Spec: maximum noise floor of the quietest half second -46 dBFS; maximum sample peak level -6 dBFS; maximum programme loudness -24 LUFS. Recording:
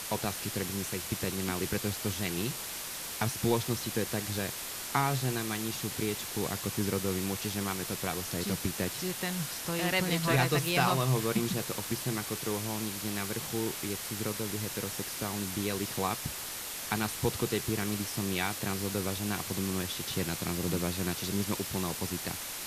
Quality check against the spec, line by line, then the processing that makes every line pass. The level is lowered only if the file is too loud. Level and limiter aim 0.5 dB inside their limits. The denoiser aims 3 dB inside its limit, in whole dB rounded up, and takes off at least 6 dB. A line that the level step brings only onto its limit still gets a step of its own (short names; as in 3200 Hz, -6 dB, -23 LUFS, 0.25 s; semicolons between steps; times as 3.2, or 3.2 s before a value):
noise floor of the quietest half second -39 dBFS: fail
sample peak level -12.5 dBFS: OK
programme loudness -32.0 LUFS: OK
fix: denoiser 10 dB, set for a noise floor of -39 dBFS